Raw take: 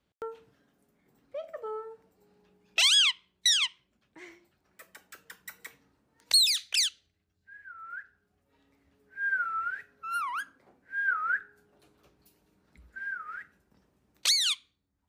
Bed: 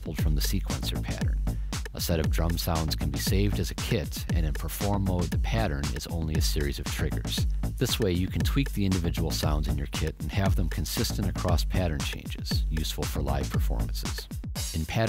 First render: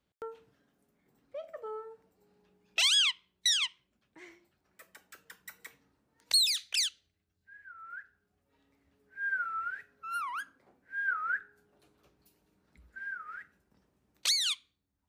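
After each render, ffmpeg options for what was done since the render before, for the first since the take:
-af "volume=0.668"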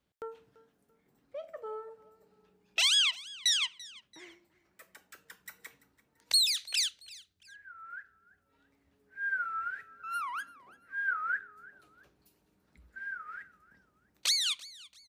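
-af "aecho=1:1:338|676:0.0944|0.0302"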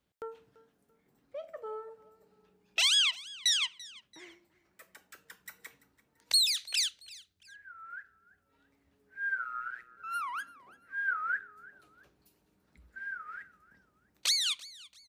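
-filter_complex "[0:a]asplit=3[s0][s1][s2];[s0]afade=t=out:st=9.35:d=0.02[s3];[s1]aeval=exprs='val(0)*sin(2*PI*61*n/s)':c=same,afade=t=in:st=9.35:d=0.02,afade=t=out:st=9.96:d=0.02[s4];[s2]afade=t=in:st=9.96:d=0.02[s5];[s3][s4][s5]amix=inputs=3:normalize=0"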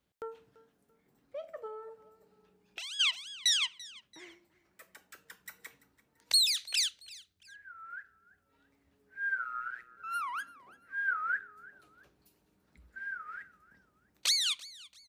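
-filter_complex "[0:a]asplit=3[s0][s1][s2];[s0]afade=t=out:st=1.66:d=0.02[s3];[s1]acompressor=threshold=0.01:ratio=6:attack=3.2:release=140:knee=1:detection=peak,afade=t=in:st=1.66:d=0.02,afade=t=out:st=2.99:d=0.02[s4];[s2]afade=t=in:st=2.99:d=0.02[s5];[s3][s4][s5]amix=inputs=3:normalize=0"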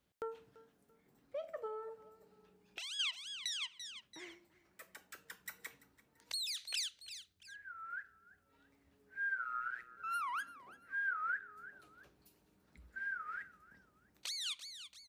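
-af "acompressor=threshold=0.0141:ratio=2.5,alimiter=level_in=1.26:limit=0.0631:level=0:latency=1:release=439,volume=0.794"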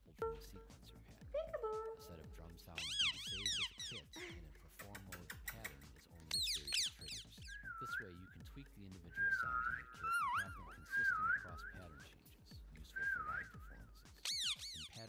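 -filter_complex "[1:a]volume=0.0316[s0];[0:a][s0]amix=inputs=2:normalize=0"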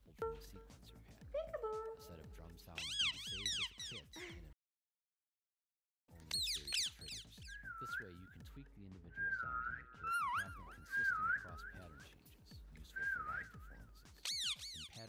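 -filter_complex "[0:a]asettb=1/sr,asplit=3[s0][s1][s2];[s0]atrim=end=8.574[s3];[s1]atrim=start=8.57:end=10.07,asetpts=PTS-STARTPTS,afade=t=in:d=0.004:c=qsin,afade=t=out:st=1.496:d=0.004:c=qsin,lowpass=f=1600:p=1[s4];[s2]atrim=start=10.066[s5];[s3][s4]acrossfade=d=0.004:c1=hsin:c2=qsin[s6];[s6][s5]acrossfade=d=0.004:c1=qsin:c2=hsin,asplit=3[s7][s8][s9];[s7]atrim=end=4.53,asetpts=PTS-STARTPTS,afade=t=out:st=4.526:d=0.004:c=hsin[s10];[s8]atrim=start=4.53:end=6.08,asetpts=PTS-STARTPTS,volume=0[s11];[s9]atrim=start=6.08,asetpts=PTS-STARTPTS,afade=t=in:d=0.004:c=hsin[s12];[s10][s11][s12]concat=n=3:v=0:a=1"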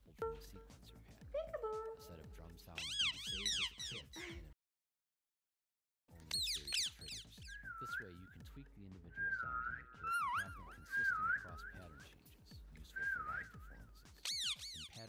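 -filter_complex "[0:a]asettb=1/sr,asplit=3[s0][s1][s2];[s0]atrim=end=3.224[s3];[s1]atrim=start=3.22:end=4.42,asetpts=PTS-STARTPTS,afade=t=in:d=0.004:c=qsin,afade=t=out:st=1.196:d=0.004:c=qsin,asplit=2[s4][s5];[s5]adelay=15,volume=0.668[s6];[s4][s6]amix=inputs=2:normalize=0,atrim=end_sample=52920[s7];[s2]atrim=start=4.416[s8];[s3][s7]acrossfade=d=0.004:c1=hsin:c2=qsin[s9];[s9][s8]acrossfade=d=0.004:c1=qsin:c2=hsin"

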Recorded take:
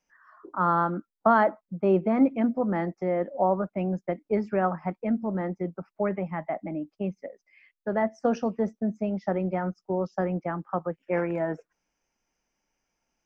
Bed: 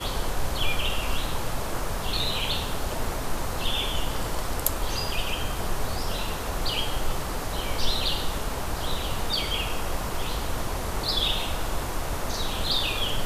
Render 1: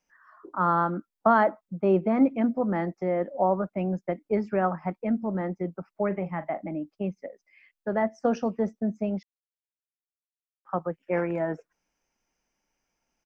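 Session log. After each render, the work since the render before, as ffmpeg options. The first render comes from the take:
-filter_complex "[0:a]asplit=3[s0][s1][s2];[s0]afade=t=out:st=6.1:d=0.02[s3];[s1]asplit=2[s4][s5];[s5]adelay=40,volume=0.224[s6];[s4][s6]amix=inputs=2:normalize=0,afade=t=in:st=6.1:d=0.02,afade=t=out:st=6.68:d=0.02[s7];[s2]afade=t=in:st=6.68:d=0.02[s8];[s3][s7][s8]amix=inputs=3:normalize=0,asplit=3[s9][s10][s11];[s9]atrim=end=9.23,asetpts=PTS-STARTPTS,afade=t=out:st=9.226:d=0.004:c=hsin[s12];[s10]atrim=start=9.23:end=10.65,asetpts=PTS-STARTPTS,volume=0[s13];[s11]atrim=start=10.65,asetpts=PTS-STARTPTS,afade=t=in:d=0.004:c=hsin[s14];[s12][s13][s14]concat=n=3:v=0:a=1"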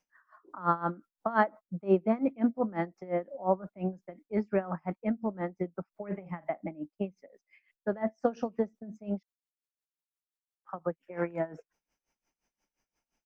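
-af "aeval=exprs='val(0)*pow(10,-20*(0.5-0.5*cos(2*PI*5.7*n/s))/20)':c=same"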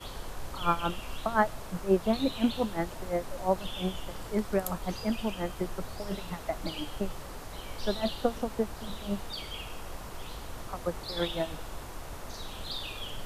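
-filter_complex "[1:a]volume=0.251[s0];[0:a][s0]amix=inputs=2:normalize=0"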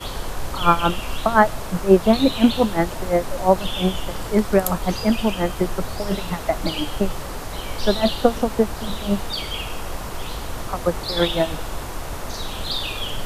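-af "volume=3.76,alimiter=limit=0.891:level=0:latency=1"

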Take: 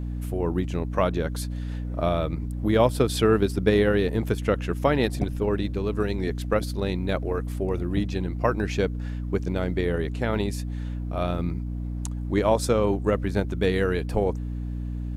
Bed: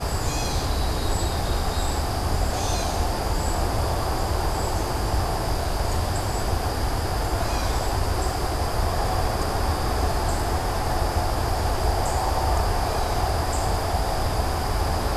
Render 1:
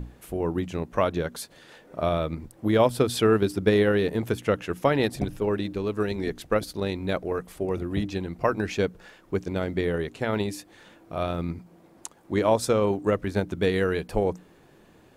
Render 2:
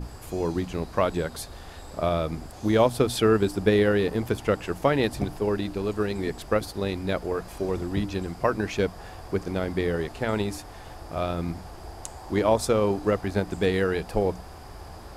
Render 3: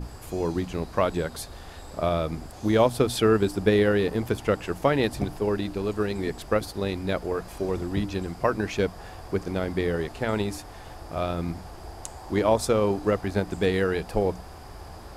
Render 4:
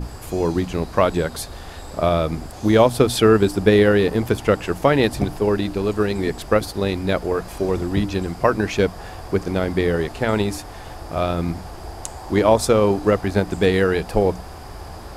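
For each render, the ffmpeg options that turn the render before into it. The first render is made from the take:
-af "bandreject=f=60:t=h:w=6,bandreject=f=120:t=h:w=6,bandreject=f=180:t=h:w=6,bandreject=f=240:t=h:w=6,bandreject=f=300:t=h:w=6"
-filter_complex "[1:a]volume=0.119[s0];[0:a][s0]amix=inputs=2:normalize=0"
-af anull
-af "volume=2.11,alimiter=limit=0.794:level=0:latency=1"

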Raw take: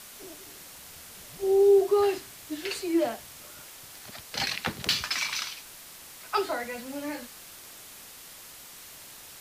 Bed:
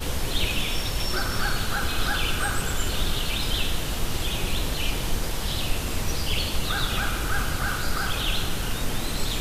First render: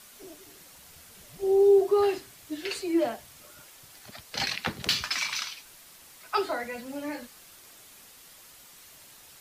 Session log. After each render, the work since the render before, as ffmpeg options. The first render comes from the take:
-af "afftdn=nr=6:nf=-47"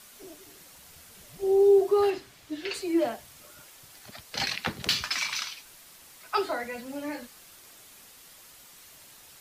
-filter_complex "[0:a]asettb=1/sr,asplit=3[s0][s1][s2];[s0]atrim=end=2.104[s3];[s1]atrim=start=2.1:end=2.74,asetpts=PTS-STARTPTS,afade=t=in:d=0.004:c=qsin,afade=t=out:st=0.636:d=0.004:c=qsin,acrossover=split=5900[s4][s5];[s5]acompressor=threshold=0.00112:ratio=4:attack=1:release=60[s6];[s4][s6]amix=inputs=2:normalize=0[s7];[s2]atrim=start=2.736[s8];[s3][s7]acrossfade=d=0.004:c1=hsin:c2=qsin[s9];[s9][s8]acrossfade=d=0.004:c1=qsin:c2=hsin"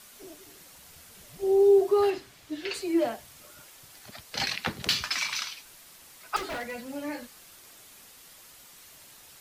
-filter_complex "[0:a]asettb=1/sr,asplit=3[s0][s1][s2];[s0]atrim=end=6.364[s3];[s1]atrim=start=6.36:end=6.88,asetpts=PTS-STARTPTS,afade=t=in:d=0.004:c=qsin,afade=t=out:st=0.516:d=0.004:c=qsin,aeval=exprs='0.0355*(abs(mod(val(0)/0.0355+3,4)-2)-1)':c=same[s4];[s2]atrim=start=6.876[s5];[s3][s4]acrossfade=d=0.004:c1=hsin:c2=qsin[s6];[s6][s5]acrossfade=d=0.004:c1=qsin:c2=hsin"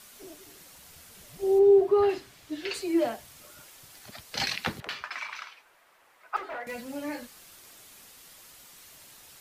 -filter_complex "[0:a]asplit=3[s0][s1][s2];[s0]afade=t=out:st=1.58:d=0.02[s3];[s1]bass=f=250:g=5,treble=f=4000:g=-13,afade=t=in:st=1.58:d=0.02,afade=t=out:st=2.09:d=0.02[s4];[s2]afade=t=in:st=2.09:d=0.02[s5];[s3][s4][s5]amix=inputs=3:normalize=0,asettb=1/sr,asplit=3[s6][s7][s8];[s6]atrim=end=4.804[s9];[s7]atrim=start=4.8:end=6.67,asetpts=PTS-STARTPTS,afade=t=in:d=0.004:c=qsin,afade=t=out:st=1.866:d=0.004:c=qsin,acrossover=split=420 2200:gain=0.126 1 0.112[s10][s11][s12];[s10][s11][s12]amix=inputs=3:normalize=0[s13];[s8]atrim=start=6.666[s14];[s9][s13]acrossfade=d=0.004:c1=hsin:c2=qsin[s15];[s15][s14]acrossfade=d=0.004:c1=qsin:c2=hsin"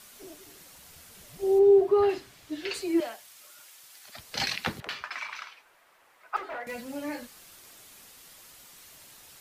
-filter_complex "[0:a]asettb=1/sr,asplit=3[s0][s1][s2];[s0]atrim=end=3.004[s3];[s1]atrim=start=3:end=4.15,asetpts=PTS-STARTPTS,afade=t=in:d=0.004:c=qsin,afade=t=out:st=1.146:d=0.004:c=qsin,highpass=f=1300:p=1[s4];[s2]atrim=start=4.146[s5];[s3][s4]acrossfade=d=0.004:c1=hsin:c2=qsin[s6];[s6][s5]acrossfade=d=0.004:c1=qsin:c2=hsin"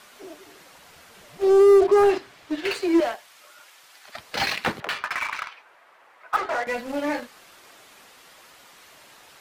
-filter_complex "[0:a]asplit=2[s0][s1];[s1]highpass=f=720:p=1,volume=7.08,asoftclip=type=tanh:threshold=0.266[s2];[s0][s2]amix=inputs=2:normalize=0,lowpass=f=1300:p=1,volume=0.501,asplit=2[s3][s4];[s4]acrusher=bits=4:mix=0:aa=0.5,volume=0.531[s5];[s3][s5]amix=inputs=2:normalize=0"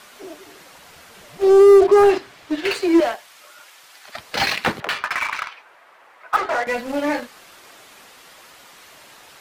-af "volume=1.68"

